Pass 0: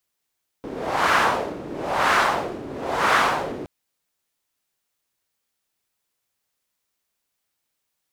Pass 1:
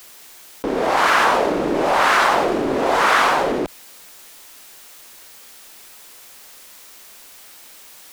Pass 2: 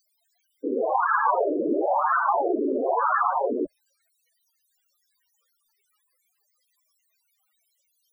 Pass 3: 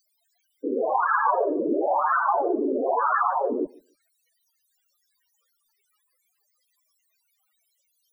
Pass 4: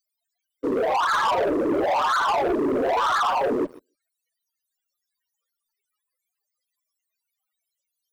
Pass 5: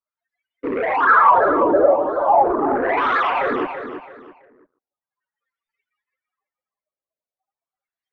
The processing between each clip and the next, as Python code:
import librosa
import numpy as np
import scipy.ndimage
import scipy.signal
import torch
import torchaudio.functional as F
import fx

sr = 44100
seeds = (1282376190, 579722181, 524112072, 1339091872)

y1 = fx.rider(x, sr, range_db=5, speed_s=0.5)
y1 = fx.peak_eq(y1, sr, hz=99.0, db=-13.0, octaves=1.5)
y1 = fx.env_flatten(y1, sr, amount_pct=50)
y1 = y1 * 10.0 ** (4.5 / 20.0)
y2 = fx.spec_topn(y1, sr, count=8)
y2 = fx.upward_expand(y2, sr, threshold_db=-43.0, expansion=1.5)
y3 = fx.echo_feedback(y2, sr, ms=145, feedback_pct=18, wet_db=-24)
y4 = np.clip(y3, -10.0 ** (-13.0 / 20.0), 10.0 ** (-13.0 / 20.0))
y4 = fx.leveller(y4, sr, passes=3)
y4 = y4 * 10.0 ** (-4.5 / 20.0)
y5 = fx.filter_lfo_lowpass(y4, sr, shape='sine', hz=0.39, low_hz=560.0, high_hz=2300.0, q=4.4)
y5 = fx.wow_flutter(y5, sr, seeds[0], rate_hz=2.1, depth_cents=27.0)
y5 = fx.echo_feedback(y5, sr, ms=332, feedback_pct=29, wet_db=-9.0)